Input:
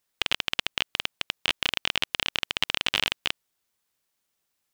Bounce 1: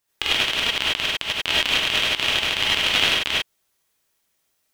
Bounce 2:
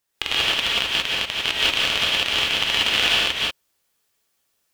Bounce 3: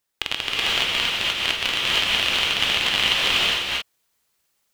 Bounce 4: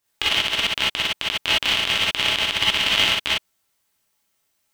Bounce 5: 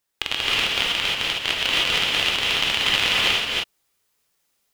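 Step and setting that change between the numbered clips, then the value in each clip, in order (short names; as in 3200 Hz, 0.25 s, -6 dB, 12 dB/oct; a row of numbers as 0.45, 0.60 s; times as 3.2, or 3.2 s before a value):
non-linear reverb, gate: 120, 210, 520, 80, 340 ms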